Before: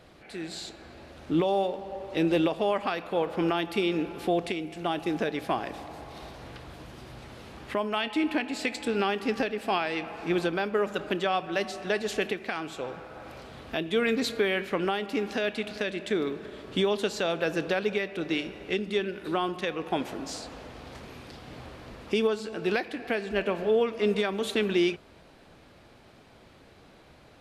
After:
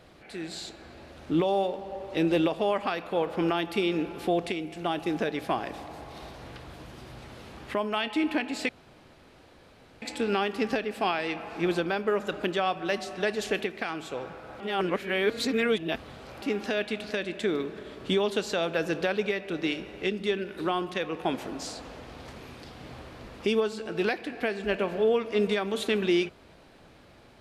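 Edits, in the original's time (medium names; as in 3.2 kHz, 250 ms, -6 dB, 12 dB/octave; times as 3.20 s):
8.69 s: insert room tone 1.33 s
13.27–15.09 s: reverse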